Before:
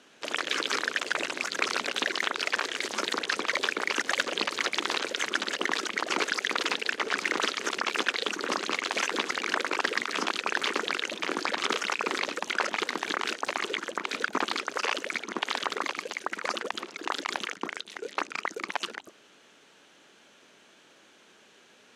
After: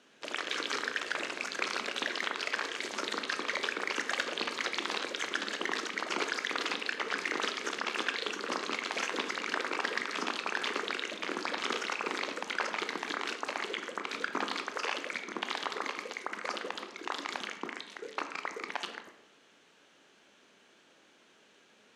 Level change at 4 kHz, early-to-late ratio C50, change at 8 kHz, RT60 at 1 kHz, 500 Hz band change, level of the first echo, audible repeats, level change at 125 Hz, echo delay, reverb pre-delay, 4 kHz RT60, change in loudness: -5.5 dB, 9.5 dB, -6.5 dB, 0.80 s, -4.5 dB, none, none, n/a, none, 15 ms, 0.55 s, -5.0 dB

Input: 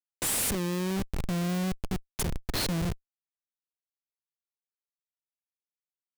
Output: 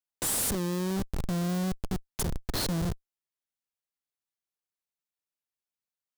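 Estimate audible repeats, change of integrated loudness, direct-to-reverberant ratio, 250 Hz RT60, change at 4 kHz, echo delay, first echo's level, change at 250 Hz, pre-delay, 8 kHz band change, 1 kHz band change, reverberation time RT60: none, -0.5 dB, none, none, -1.5 dB, none, none, 0.0 dB, none, 0.0 dB, -0.5 dB, none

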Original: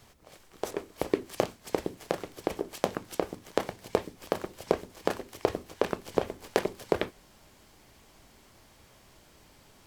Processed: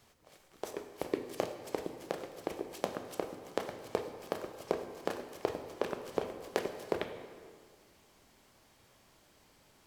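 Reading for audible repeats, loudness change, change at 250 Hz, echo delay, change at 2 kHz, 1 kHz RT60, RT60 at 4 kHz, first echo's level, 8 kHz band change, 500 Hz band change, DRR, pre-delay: none, -6.0 dB, -6.5 dB, none, -6.0 dB, 1.9 s, 1.2 s, none, -6.0 dB, -6.0 dB, 7.0 dB, 27 ms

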